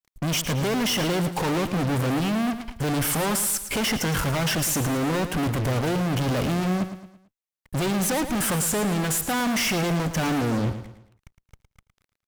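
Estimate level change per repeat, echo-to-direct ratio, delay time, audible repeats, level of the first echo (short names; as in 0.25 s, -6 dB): -8.0 dB, -10.0 dB, 0.111 s, 4, -11.0 dB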